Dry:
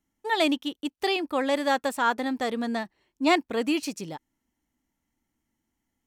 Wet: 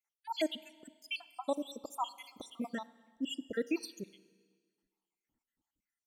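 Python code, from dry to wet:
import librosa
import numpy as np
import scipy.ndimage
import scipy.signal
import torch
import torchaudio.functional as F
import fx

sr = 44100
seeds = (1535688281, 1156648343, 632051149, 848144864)

y = fx.spec_dropout(x, sr, seeds[0], share_pct=77)
y = fx.high_shelf(y, sr, hz=9000.0, db=11.5, at=(2.14, 2.75))
y = fx.rev_schroeder(y, sr, rt60_s=1.6, comb_ms=32, drr_db=18.0)
y = y * librosa.db_to_amplitude(-5.5)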